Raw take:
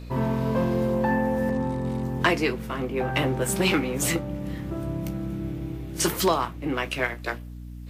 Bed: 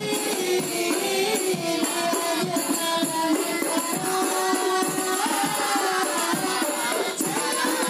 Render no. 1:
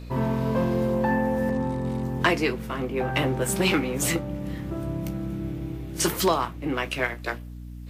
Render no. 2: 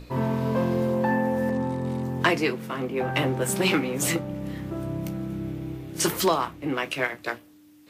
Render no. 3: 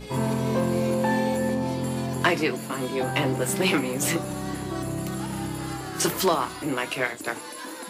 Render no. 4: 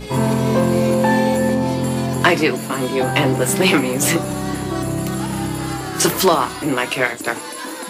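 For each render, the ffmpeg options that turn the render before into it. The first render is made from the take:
-af anull
-af "bandreject=f=60:t=h:w=6,bandreject=f=120:t=h:w=6,bandreject=f=180:t=h:w=6,bandreject=f=240:t=h:w=6"
-filter_complex "[1:a]volume=0.211[s0];[0:a][s0]amix=inputs=2:normalize=0"
-af "volume=2.51,alimiter=limit=0.794:level=0:latency=1"

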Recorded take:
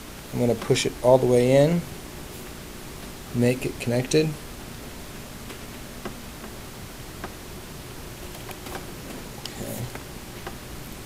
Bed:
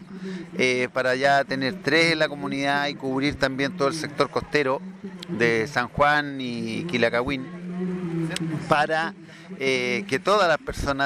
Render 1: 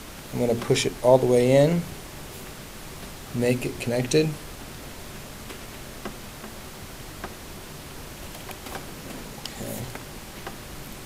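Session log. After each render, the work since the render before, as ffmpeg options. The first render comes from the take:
-af "bandreject=f=60:t=h:w=4,bandreject=f=120:t=h:w=4,bandreject=f=180:t=h:w=4,bandreject=f=240:t=h:w=4,bandreject=f=300:t=h:w=4,bandreject=f=360:t=h:w=4,bandreject=f=420:t=h:w=4"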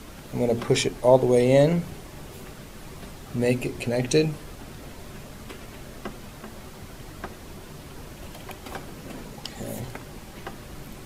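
-af "afftdn=nr=6:nf=-41"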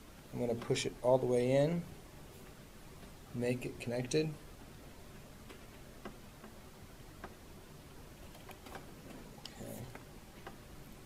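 -af "volume=0.237"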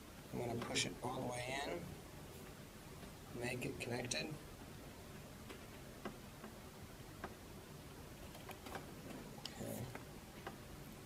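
-af "afftfilt=real='re*lt(hypot(re,im),0.0794)':imag='im*lt(hypot(re,im),0.0794)':win_size=1024:overlap=0.75,highpass=47"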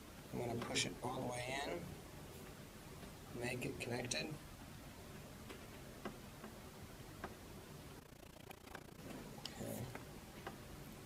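-filter_complex "[0:a]asettb=1/sr,asplit=3[s0][s1][s2];[s0]atrim=end=4.364[s3];[s1]atrim=start=4.36:end=4.98,asetpts=PTS-STARTPTS,afade=t=in:d=0.004:c=qsin,afade=t=out:st=0.616:d=0.004:c=qsin,equalizer=f=430:t=o:w=0.35:g=-10.5[s4];[s2]atrim=start=4.976[s5];[s3][s4]acrossfade=d=0.004:c1=hsin:c2=qsin[s6];[s6][s5]acrossfade=d=0.004:c1=qsin:c2=hsin,asettb=1/sr,asplit=3[s7][s8][s9];[s7]atrim=end=7.994[s10];[s8]atrim=start=7.99:end=9,asetpts=PTS-STARTPTS,afade=t=in:d=0.004:c=qsin,afade=t=out:st=1.006:d=0.004:c=qsin,tremolo=f=29:d=0.889[s11];[s9]atrim=start=8.996[s12];[s10][s11]acrossfade=d=0.004:c1=hsin:c2=qsin[s13];[s13][s12]acrossfade=d=0.004:c1=qsin:c2=hsin"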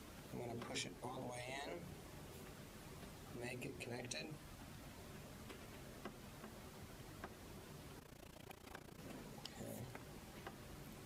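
-af "acompressor=threshold=0.00224:ratio=1.5"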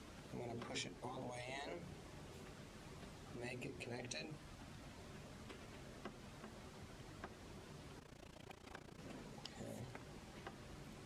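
-af "lowpass=8200"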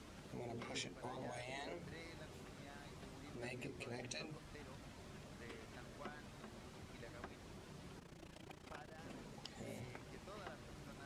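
-filter_complex "[1:a]volume=0.0141[s0];[0:a][s0]amix=inputs=2:normalize=0"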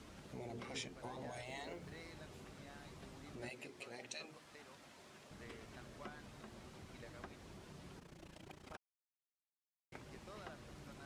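-filter_complex "[0:a]asettb=1/sr,asplit=3[s0][s1][s2];[s0]atrim=end=1.454[s3];[s1]atrim=start=1.45:end=2.12,asetpts=PTS-STARTPTS,afade=t=in:d=0.004:c=qsin,afade=t=out:st=0.666:d=0.004:c=qsin,acrusher=bits=9:mode=log:mix=0:aa=0.000001[s4];[s2]atrim=start=2.116[s5];[s3][s4]acrossfade=d=0.004:c1=hsin:c2=qsin[s6];[s6][s5]acrossfade=d=0.004:c1=qsin:c2=hsin,asettb=1/sr,asplit=3[s7][s8][s9];[s7]atrim=end=3.494[s10];[s8]atrim=start=3.49:end=5.31,asetpts=PTS-STARTPTS,afade=t=in:d=0.004:c=qsin,afade=t=out:st=1.816:d=0.004:c=qsin,highpass=f=470:p=1[s11];[s9]atrim=start=5.306[s12];[s10][s11]acrossfade=d=0.004:c1=hsin:c2=qsin[s13];[s13][s12]acrossfade=d=0.004:c1=qsin:c2=hsin,asplit=3[s14][s15][s16];[s14]atrim=end=8.77,asetpts=PTS-STARTPTS,afade=t=out:st=8.766:d=0.004:c=hsin[s17];[s15]atrim=start=8.77:end=9.92,asetpts=PTS-STARTPTS,volume=0[s18];[s16]atrim=start=9.92,asetpts=PTS-STARTPTS,afade=t=in:d=0.004:c=hsin[s19];[s17][s18][s19]concat=n=3:v=0:a=1"

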